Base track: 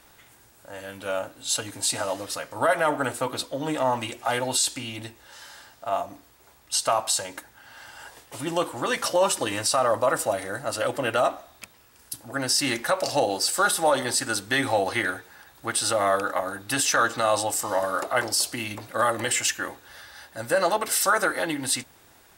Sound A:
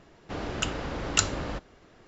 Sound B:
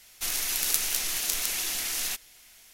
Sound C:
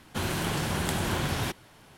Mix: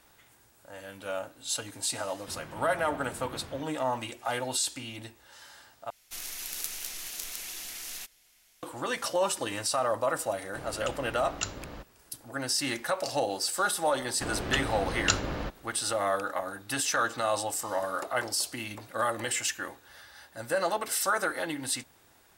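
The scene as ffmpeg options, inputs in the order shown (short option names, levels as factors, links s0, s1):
-filter_complex "[1:a]asplit=2[s0][s1];[0:a]volume=0.501[s2];[3:a]lowpass=2700[s3];[s1]lowpass=6500[s4];[s2]asplit=2[s5][s6];[s5]atrim=end=5.904[s7];[2:a]atrim=end=2.73,asetpts=PTS-STARTPTS,volume=0.335[s8];[s6]atrim=start=8.626[s9];[s3]atrim=end=1.97,asetpts=PTS-STARTPTS,volume=0.158,afade=t=in:d=0.004:c=hsin,afade=t=out:st=1.966:d=0.004:c=hsin,adelay=2120[s10];[s0]atrim=end=2.07,asetpts=PTS-STARTPTS,volume=0.335,afade=t=in:d=0.004:c=hsin,afade=t=out:st=2.066:d=0.004:c=hsin,adelay=10240[s11];[s4]atrim=end=2.07,asetpts=PTS-STARTPTS,volume=0.944,afade=t=in:d=0.004:c=hsin,afade=t=out:st=2.066:d=0.004:c=hsin,adelay=13910[s12];[s7][s8]acrossfade=d=0.004:c1=hsin:c2=hsin[s13];[s13][s9]acrossfade=d=0.004:c1=hsin:c2=hsin[s14];[s14][s10][s11][s12]amix=inputs=4:normalize=0"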